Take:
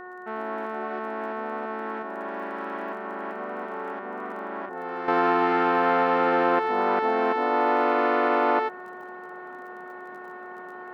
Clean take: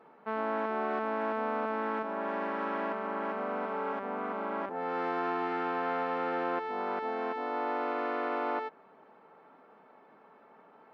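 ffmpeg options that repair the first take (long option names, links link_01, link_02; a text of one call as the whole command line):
ffmpeg -i in.wav -af "adeclick=threshold=4,bandreject=frequency=364.4:width_type=h:width=4,bandreject=frequency=728.8:width_type=h:width=4,bandreject=frequency=1093.2:width_type=h:width=4,bandreject=frequency=1457.6:width_type=h:width=4,bandreject=frequency=1822:width_type=h:width=4,asetnsamples=nb_out_samples=441:pad=0,asendcmd='5.08 volume volume -10.5dB',volume=0dB" out.wav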